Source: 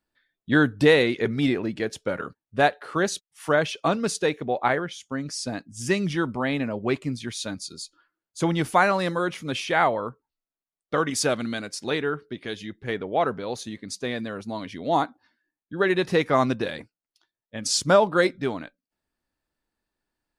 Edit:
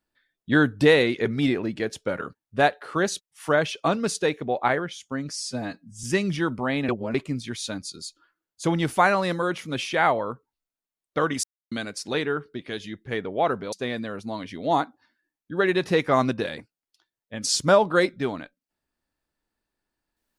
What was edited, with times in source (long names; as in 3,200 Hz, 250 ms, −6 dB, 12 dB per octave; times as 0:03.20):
0:05.33–0:05.80: time-stretch 1.5×
0:06.65–0:06.91: reverse
0:11.20–0:11.48: silence
0:13.49–0:13.94: remove